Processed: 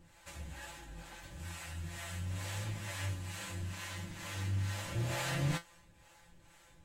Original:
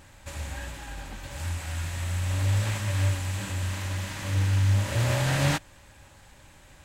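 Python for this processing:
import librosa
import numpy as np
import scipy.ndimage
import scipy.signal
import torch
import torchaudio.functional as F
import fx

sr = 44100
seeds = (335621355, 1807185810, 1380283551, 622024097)

y = fx.harmonic_tremolo(x, sr, hz=2.2, depth_pct=70, crossover_hz=460.0)
y = fx.comb_fb(y, sr, f0_hz=170.0, decay_s=0.16, harmonics='all', damping=0.0, mix_pct=90)
y = y * 10.0 ** (3.0 / 20.0)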